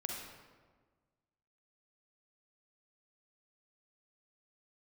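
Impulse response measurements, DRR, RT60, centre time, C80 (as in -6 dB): -0.5 dB, 1.5 s, 69 ms, 3.5 dB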